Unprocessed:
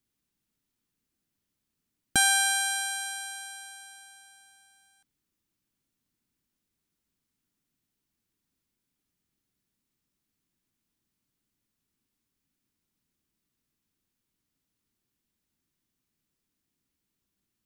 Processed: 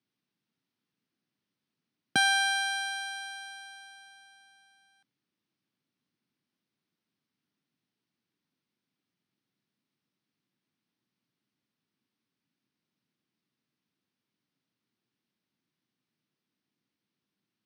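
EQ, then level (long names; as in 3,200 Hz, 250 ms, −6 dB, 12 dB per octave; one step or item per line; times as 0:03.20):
Savitzky-Golay smoothing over 15 samples
high-pass filter 120 Hz 24 dB per octave
0.0 dB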